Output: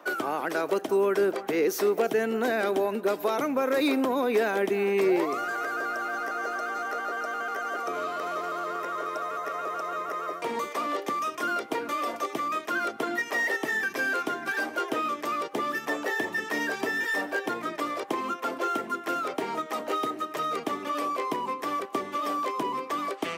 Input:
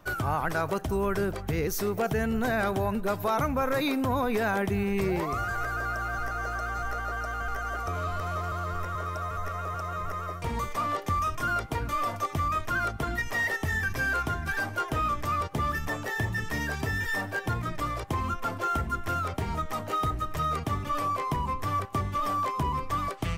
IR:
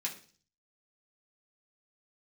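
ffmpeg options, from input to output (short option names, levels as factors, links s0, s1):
-filter_complex "[0:a]highpass=f=310:w=0.5412,highpass=f=310:w=1.3066,highshelf=f=3000:g=-10,acrossover=split=480|2100[s0][s1][s2];[s1]acompressor=threshold=0.00794:ratio=6[s3];[s2]asoftclip=type=hard:threshold=0.0133[s4];[s0][s3][s4]amix=inputs=3:normalize=0,volume=2.82"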